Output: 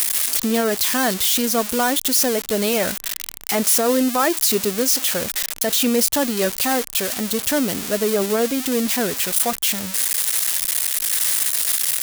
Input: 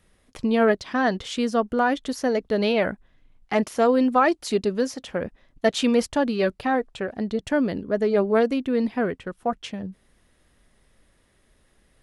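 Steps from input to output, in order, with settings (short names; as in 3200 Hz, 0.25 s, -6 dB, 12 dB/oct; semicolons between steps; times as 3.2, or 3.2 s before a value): switching spikes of -11.5 dBFS; limiter -13.5 dBFS, peak gain reduction 8 dB; gain +3.5 dB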